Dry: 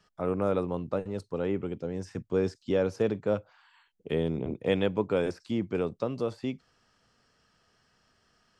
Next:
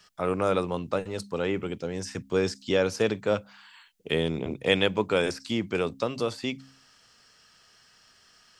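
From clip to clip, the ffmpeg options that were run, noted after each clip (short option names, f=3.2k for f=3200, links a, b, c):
-af "tiltshelf=f=1.4k:g=-7,bandreject=f=66.97:t=h:w=4,bandreject=f=133.94:t=h:w=4,bandreject=f=200.91:t=h:w=4,bandreject=f=267.88:t=h:w=4,volume=7.5dB"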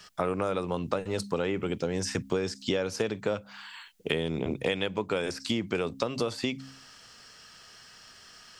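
-af "acompressor=threshold=-32dB:ratio=12,volume=7dB"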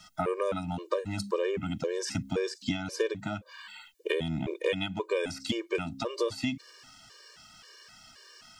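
-af "afftfilt=real='re*gt(sin(2*PI*1.9*pts/sr)*(1-2*mod(floor(b*sr/1024/310),2)),0)':imag='im*gt(sin(2*PI*1.9*pts/sr)*(1-2*mod(floor(b*sr/1024/310),2)),0)':win_size=1024:overlap=0.75,volume=1.5dB"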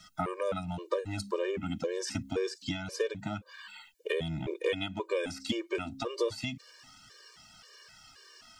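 -af "flanger=delay=0.5:depth=3.4:regen=-42:speed=0.28:shape=triangular,volume=2dB"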